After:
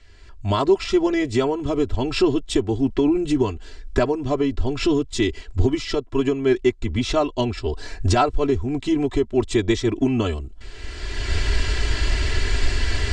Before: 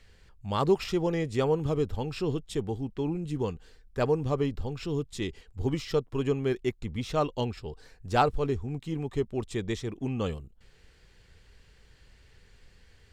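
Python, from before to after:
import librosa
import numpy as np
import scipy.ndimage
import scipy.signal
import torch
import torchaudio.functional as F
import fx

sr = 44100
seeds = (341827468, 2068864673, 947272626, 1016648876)

y = fx.recorder_agc(x, sr, target_db=-14.5, rise_db_per_s=23.0, max_gain_db=30)
y = scipy.signal.sosfilt(scipy.signal.butter(4, 8300.0, 'lowpass', fs=sr, output='sos'), y)
y = y + 0.96 * np.pad(y, (int(3.0 * sr / 1000.0), 0))[:len(y)]
y = F.gain(torch.from_numpy(y), 2.0).numpy()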